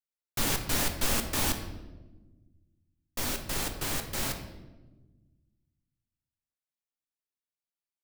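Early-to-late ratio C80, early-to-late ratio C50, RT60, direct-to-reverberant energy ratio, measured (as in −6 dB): 10.0 dB, 8.0 dB, 1.2 s, 5.0 dB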